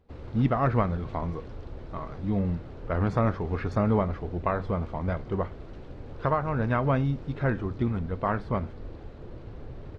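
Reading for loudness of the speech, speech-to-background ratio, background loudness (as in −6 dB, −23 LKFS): −28.5 LKFS, 15.0 dB, −43.5 LKFS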